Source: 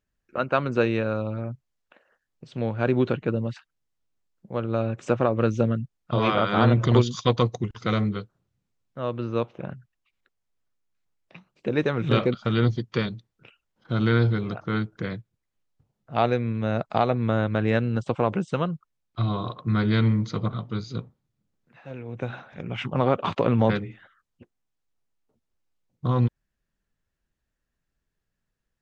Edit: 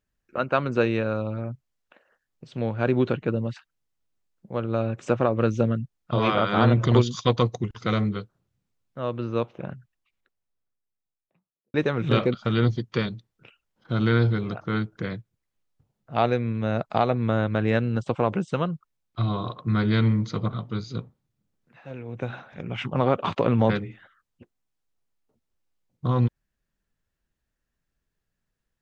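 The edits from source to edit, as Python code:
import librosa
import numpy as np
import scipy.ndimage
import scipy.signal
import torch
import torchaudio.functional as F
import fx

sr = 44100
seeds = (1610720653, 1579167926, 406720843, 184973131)

y = fx.studio_fade_out(x, sr, start_s=9.73, length_s=2.01)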